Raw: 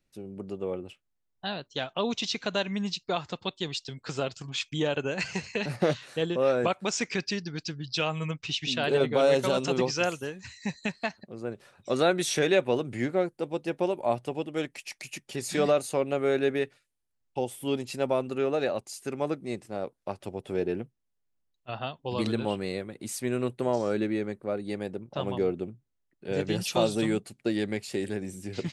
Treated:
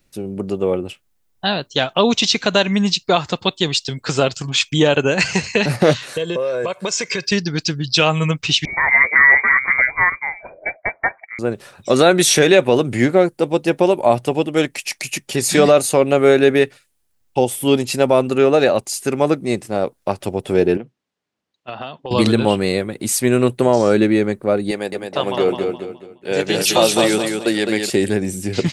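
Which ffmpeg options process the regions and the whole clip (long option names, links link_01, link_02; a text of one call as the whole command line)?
ffmpeg -i in.wav -filter_complex "[0:a]asettb=1/sr,asplit=3[link_01][link_02][link_03];[link_01]atrim=end=6.134[link_04];[link_02]atrim=start=6.13:end=7.32,asetpts=PTS-STARTPTS,afade=type=in:duration=0.004:curve=qsin,afade=type=out:start_time=1.186:duration=0.004:curve=qsin,highpass=140,aecho=1:1:1.9:0.61,atrim=end_sample=52479,acompressor=threshold=-32dB:ratio=8:attack=3.2:release=140:knee=1:detection=peak[link_05];[link_03]atrim=start=7.316[link_06];[link_04][link_05]acrossfade=duration=0.004:curve1=hsin:curve2=qsin[link_07];[link_07][link_06]acrossfade=duration=0.004:curve1=qsin:curve2=hsin,asettb=1/sr,asplit=3[link_08][link_09][link_10];[link_08]atrim=end=8.654[link_11];[link_09]atrim=start=8.65:end=11.39,asetpts=PTS-STARTPTS,afade=type=in:duration=0.004:curve=qsin,afade=type=out:start_time=2.736:duration=0.004:curve=qsin,highpass=frequency=480:poles=1,lowpass=frequency=2100:width_type=q:width=0.5098,lowpass=frequency=2100:width_type=q:width=0.6013,lowpass=frequency=2100:width_type=q:width=0.9,lowpass=frequency=2100:width_type=q:width=2.563,afreqshift=-2500[link_12];[link_10]atrim=start=11.386[link_13];[link_11][link_12]acrossfade=duration=0.004:curve1=hsin:curve2=qsin[link_14];[link_14][link_13]acrossfade=duration=0.004:curve1=qsin:curve2=hsin,asettb=1/sr,asplit=3[link_15][link_16][link_17];[link_15]atrim=end=20.774[link_18];[link_16]atrim=start=20.77:end=22.11,asetpts=PTS-STARTPTS,afade=type=in:duration=0.004:curve=qsin,afade=type=out:start_time=1.336:duration=0.004:curve=qsin,highpass=170,lowpass=4300,acompressor=threshold=-39dB:ratio=6:attack=3.2:release=140:knee=1:detection=peak[link_19];[link_17]atrim=start=22.106[link_20];[link_18][link_19]acrossfade=duration=0.004:curve1=hsin:curve2=qsin[link_21];[link_21][link_20]acrossfade=duration=0.004:curve1=qsin:curve2=hsin,asettb=1/sr,asplit=3[link_22][link_23][link_24];[link_22]atrim=end=24.714[link_25];[link_23]atrim=start=24.71:end=27.9,asetpts=PTS-STARTPTS,afade=type=in:duration=0.004:curve=qsin,afade=type=out:start_time=3.186:duration=0.004:curve=qsin,highpass=frequency=510:poles=1,agate=range=-33dB:threshold=-52dB:ratio=3:release=100:detection=peak,aecho=1:1:210|420|630|840:0.562|0.186|0.0612|0.0202,atrim=end_sample=140679[link_26];[link_24]atrim=start=27.896[link_27];[link_25][link_26]acrossfade=duration=0.004:curve1=hsin:curve2=qsin[link_28];[link_28][link_27]acrossfade=duration=0.004:curve1=qsin:curve2=hsin,highshelf=frequency=8200:gain=6,alimiter=level_in=15dB:limit=-1dB:release=50:level=0:latency=1,volume=-1dB" out.wav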